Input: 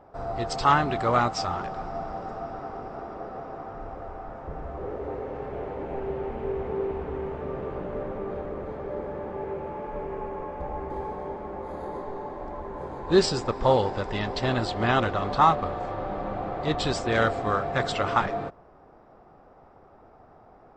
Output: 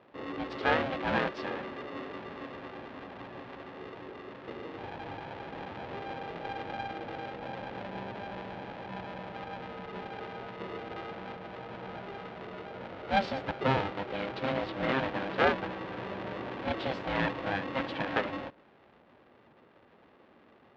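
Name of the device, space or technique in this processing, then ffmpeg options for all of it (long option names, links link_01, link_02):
ring modulator pedal into a guitar cabinet: -af "aeval=exprs='val(0)*sgn(sin(2*PI*400*n/s))':channel_layout=same,highpass=85,equalizer=frequency=230:width_type=q:width=4:gain=4,equalizer=frequency=560:width_type=q:width=4:gain=6,equalizer=frequency=1100:width_type=q:width=4:gain=-5,lowpass=frequency=3500:width=0.5412,lowpass=frequency=3500:width=1.3066,volume=-7dB"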